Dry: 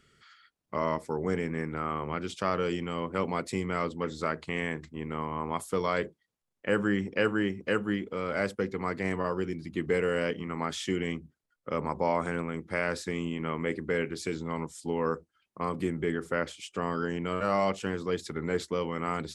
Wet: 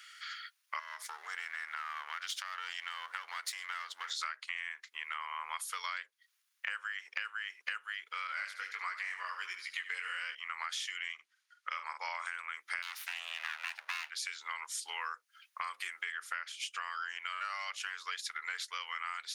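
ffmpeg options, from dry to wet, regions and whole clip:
-filter_complex "[0:a]asettb=1/sr,asplit=3[a][b][c];[a]atrim=end=0.794[d];[b]atrim=start=0.79:end=4.11,asetpts=PTS-STARTPTS,afade=t=in:d=0.004:c=qsin,afade=t=out:st=3.316:d=0.004:c=qsin,aeval=exprs='if(lt(val(0),0),0.447*val(0),val(0))':c=same,equalizer=f=2.5k:w=7.6:g=-9,acompressor=threshold=-35dB:ratio=12:attack=3.2:release=140:knee=1:detection=peak[e];[c]atrim=start=4.106[f];[d][e]acrossfade=d=0.004:c1=hsin:c2=qsin[g];[g][f]acrossfade=d=0.004:c1=qsin:c2=hsin,asettb=1/sr,asplit=3[h][i][j];[h]atrim=end=8.274[k];[i]atrim=start=8.27:end=10.35,asetpts=PTS-STARTPTS,afade=t=in:d=0.004:c=qsin,afade=t=out:st=2.076:d=0.004:c=qsin,flanger=delay=15.5:depth=6.6:speed=1.5,aecho=1:1:74|148|222|296:0.251|0.098|0.0382|0.0149,atrim=end_sample=91728[l];[j]atrim=start=10.346[m];[k][l]acrossfade=d=0.004:c1=hsin:c2=qsin[n];[n][m]acrossfade=d=0.004:c1=qsin:c2=hsin,asettb=1/sr,asplit=3[o][p][q];[o]atrim=end=11.144[r];[p]atrim=start=11.14:end=12.26,asetpts=PTS-STARTPTS,afade=t=in:d=0.004:c=qsin,afade=t=out:st=1.116:d=0.004:c=qsin,lowpass=7.9k,asplit=2[s][t];[t]adelay=47,volume=-8dB[u];[s][u]amix=inputs=2:normalize=0,atrim=end_sample=49392[v];[q]atrim=start=12.256[w];[r][v]acrossfade=d=0.004:c1=hsin:c2=qsin[x];[x][w]acrossfade=d=0.004:c1=qsin:c2=hsin,asettb=1/sr,asplit=3[y][z][aa];[y]atrim=end=12.824[ab];[z]atrim=start=12.82:end=14.1,asetpts=PTS-STARTPTS,afade=t=in:d=0.004:c=qsin,afade=t=out:st=1.276:d=0.004:c=qsin,aeval=exprs='abs(val(0))':c=same,afreqshift=110[ac];[aa]atrim=start=14.096[ad];[ab][ac]acrossfade=d=0.004:c1=hsin:c2=qsin[ae];[ae][ad]acrossfade=d=0.004:c1=qsin:c2=hsin,highpass=f=1.4k:w=0.5412,highpass=f=1.4k:w=1.3066,bandreject=f=7.7k:w=7.2,acompressor=threshold=-50dB:ratio=12,volume=14.5dB"

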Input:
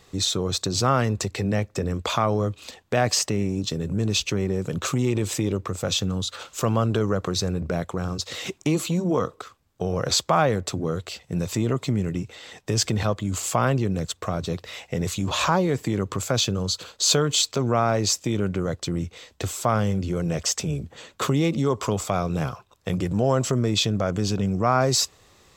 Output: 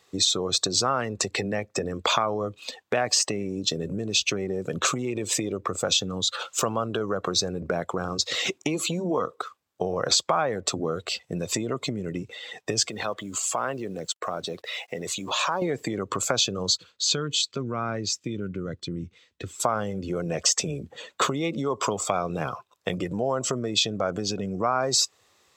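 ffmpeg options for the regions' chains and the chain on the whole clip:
-filter_complex "[0:a]asettb=1/sr,asplit=3[a][b][c];[a]atrim=end=12.884[d];[b]atrim=start=12.88:end=15.62,asetpts=PTS-STARTPTS,afade=t=in:d=0.004:c=qsin,afade=t=out:st=2.736:d=0.004:c=qsin,highpass=f=240:p=1,acompressor=threshold=-34dB:ratio=2:attack=3.2:release=140:knee=1:detection=peak,acrusher=bits=8:mix=0:aa=0.5[e];[c]atrim=start=15.616[f];[d][e]acrossfade=d=0.004:c1=hsin:c2=qsin[g];[g][f]acrossfade=d=0.004:c1=qsin:c2=hsin,asettb=1/sr,asplit=3[h][i][j];[h]atrim=end=16.774[k];[i]atrim=start=16.77:end=19.6,asetpts=PTS-STARTPTS,afade=t=in:d=0.004:c=qsin,afade=t=out:st=2.826:d=0.004:c=qsin,lowpass=f=1.8k:p=1,equalizer=f=710:t=o:w=1.8:g=-14.5[l];[j]atrim=start=19.596[m];[k][l]acrossfade=d=0.004:c1=hsin:c2=qsin[n];[n][m]acrossfade=d=0.004:c1=qsin:c2=hsin,acompressor=threshold=-25dB:ratio=6,afftdn=nr=13:nf=-41,highpass=f=510:p=1,volume=7.5dB"

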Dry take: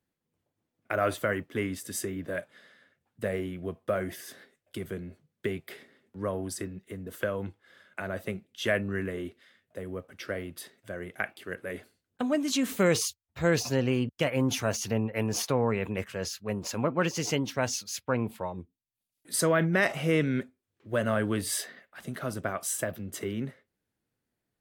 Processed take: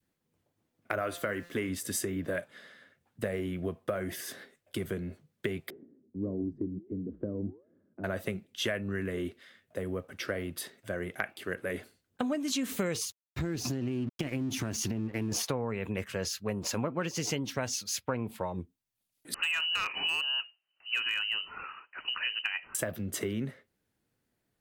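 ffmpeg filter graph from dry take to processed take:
-filter_complex "[0:a]asettb=1/sr,asplit=3[a][b][c];[a]atrim=end=1.014[d];[b]atrim=start=1.01:end=1.69,asetpts=PTS-STARTPTS,afade=t=in:d=0.004:c=qsin,afade=t=out:st=0.676:d=0.004:c=qsin,equalizer=f=120:t=o:w=1.1:g=-5.5,bandreject=f=173.4:t=h:w=4,bandreject=f=346.8:t=h:w=4,bandreject=f=520.2:t=h:w=4,bandreject=f=693.6:t=h:w=4,bandreject=f=867:t=h:w=4,bandreject=f=1.0404k:t=h:w=4,bandreject=f=1.2138k:t=h:w=4,bandreject=f=1.3872k:t=h:w=4,bandreject=f=1.5606k:t=h:w=4,bandreject=f=1.734k:t=h:w=4,bandreject=f=1.9074k:t=h:w=4,bandreject=f=2.0808k:t=h:w=4,bandreject=f=2.2542k:t=h:w=4,bandreject=f=2.4276k:t=h:w=4,bandreject=f=2.601k:t=h:w=4,bandreject=f=2.7744k:t=h:w=4,bandreject=f=2.9478k:t=h:w=4,bandreject=f=3.1212k:t=h:w=4,bandreject=f=3.2946k:t=h:w=4,bandreject=f=3.468k:t=h:w=4,bandreject=f=3.6414k:t=h:w=4,bandreject=f=3.8148k:t=h:w=4,bandreject=f=3.9882k:t=h:w=4,bandreject=f=4.1616k:t=h:w=4,bandreject=f=4.335k:t=h:w=4,bandreject=f=4.5084k:t=h:w=4,bandreject=f=4.6818k:t=h:w=4,bandreject=f=4.8552k:t=h:w=4,bandreject=f=5.0286k:t=h:w=4,bandreject=f=5.202k:t=h:w=4,bandreject=f=5.3754k:t=h:w=4,bandreject=f=5.5488k:t=h:w=4,aeval=exprs='val(0)*gte(abs(val(0)),0.002)':c=same[e];[c]atrim=start=1.686[f];[d][e]acrossfade=d=0.004:c1=hsin:c2=qsin[g];[g][f]acrossfade=d=0.004:c1=qsin:c2=hsin,asettb=1/sr,asplit=3[h][i][j];[h]atrim=end=5.704[k];[i]atrim=start=5.7:end=8.04,asetpts=PTS-STARTPTS,afade=t=in:d=0.004:c=qsin,afade=t=out:st=2.336:d=0.004:c=qsin,lowpass=f=300:t=q:w=2.8,flanger=delay=5.3:depth=7.7:regen=-87:speed=1.5:shape=sinusoidal[l];[j]atrim=start=8.036[m];[k][l]acrossfade=d=0.004:c1=hsin:c2=qsin[n];[n][m]acrossfade=d=0.004:c1=qsin:c2=hsin,asettb=1/sr,asplit=3[o][p][q];[o]atrim=end=13.044[r];[p]atrim=start=13.04:end=15.32,asetpts=PTS-STARTPTS,afade=t=in:d=0.004:c=qsin,afade=t=out:st=2.276:d=0.004:c=qsin,lowshelf=f=420:t=q:w=3:g=6.5,acompressor=threshold=-29dB:ratio=6:attack=3.2:release=140:knee=1:detection=peak,aeval=exprs='sgn(val(0))*max(abs(val(0))-0.00299,0)':c=same[s];[q]atrim=start=15.316[t];[r][s]acrossfade=d=0.004:c1=hsin:c2=qsin[u];[u][t]acrossfade=d=0.004:c1=qsin:c2=hsin,asettb=1/sr,asplit=3[v][w][x];[v]atrim=end=19.344[y];[w]atrim=start=19.34:end=22.75,asetpts=PTS-STARTPTS,afade=t=in:d=0.004:c=qsin,afade=t=out:st=3.406:d=0.004:c=qsin,lowpass=f=2.6k:t=q:w=0.5098,lowpass=f=2.6k:t=q:w=0.6013,lowpass=f=2.6k:t=q:w=0.9,lowpass=f=2.6k:t=q:w=2.563,afreqshift=-3100,asoftclip=type=hard:threshold=-18.5dB[z];[x]atrim=start=22.746[aa];[y][z]acrossfade=d=0.004:c1=hsin:c2=qsin[ab];[ab][aa]acrossfade=d=0.004:c1=qsin:c2=hsin,adynamicequalizer=threshold=0.00794:dfrequency=810:dqfactor=0.87:tfrequency=810:tqfactor=0.87:attack=5:release=100:ratio=0.375:range=2:mode=cutabove:tftype=bell,acompressor=threshold=-33dB:ratio=6,volume=4dB"

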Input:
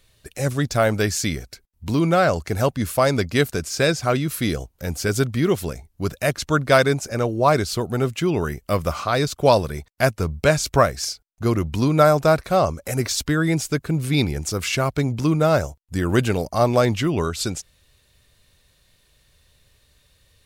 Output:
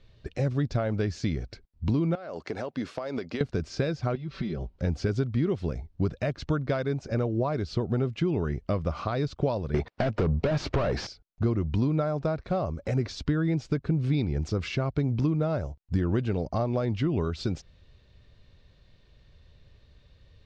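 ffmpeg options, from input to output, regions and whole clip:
-filter_complex "[0:a]asettb=1/sr,asplit=3[a][b][c];[a]atrim=end=2.154[d];[b]atrim=start=2.15:end=3.41,asetpts=PTS-STARTPTS,afade=t=in:d=0.004:c=qsin,afade=t=out:st=1.256:d=0.004:c=qsin,highpass=330,acompressor=threshold=-28dB:ratio=20:attack=3.2:release=140:knee=1:detection=peak[e];[c]atrim=start=3.406[f];[d][e]acrossfade=d=0.004:c1=hsin:c2=qsin[g];[g][f]acrossfade=d=0.004:c1=qsin:c2=hsin,asettb=1/sr,asplit=3[h][i][j];[h]atrim=end=4.154[k];[i]atrim=start=4.15:end=4.76,asetpts=PTS-STARTPTS,afade=t=in:d=0.004:c=qsin,afade=t=out:st=0.606:d=0.004:c=qsin,lowpass=f=5.1k:w=0.5412,lowpass=f=5.1k:w=1.3066,acompressor=threshold=-32dB:ratio=16:attack=3.2:release=140:knee=1:detection=peak,aecho=1:1:5.2:0.95,atrim=end_sample=26901[l];[j]atrim=start=4.756[m];[k][l]acrossfade=d=0.004:c1=hsin:c2=qsin[n];[n][m]acrossfade=d=0.004:c1=qsin:c2=hsin,asettb=1/sr,asplit=3[o][p][q];[o]atrim=end=9.744[r];[p]atrim=start=9.74:end=11.07,asetpts=PTS-STARTPTS,afade=t=in:d=0.004:c=qsin,afade=t=out:st=1.326:d=0.004:c=qsin,tiltshelf=f=1.3k:g=4,acompressor=threshold=-21dB:ratio=3:attack=3.2:release=140:knee=1:detection=peak,asplit=2[s][t];[t]highpass=f=720:p=1,volume=31dB,asoftclip=type=tanh:threshold=-8.5dB[u];[s][u]amix=inputs=2:normalize=0,lowpass=f=3.7k:p=1,volume=-6dB[v];[q]atrim=start=11.066[w];[r][v]acrossfade=d=0.004:c1=hsin:c2=qsin[x];[x][w]acrossfade=d=0.004:c1=qsin:c2=hsin,acompressor=threshold=-27dB:ratio=6,lowpass=f=5k:w=0.5412,lowpass=f=5k:w=1.3066,tiltshelf=f=680:g=5.5"

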